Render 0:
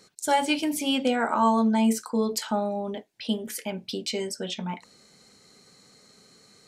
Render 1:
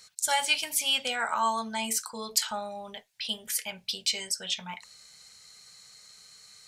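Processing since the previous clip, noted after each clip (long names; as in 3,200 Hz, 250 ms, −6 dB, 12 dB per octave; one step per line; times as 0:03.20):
guitar amp tone stack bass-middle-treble 10-0-10
level +6 dB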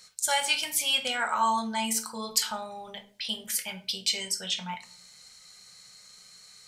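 convolution reverb RT60 0.45 s, pre-delay 6 ms, DRR 6 dB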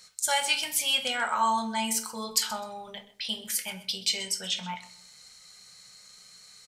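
repeating echo 128 ms, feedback 23%, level −18 dB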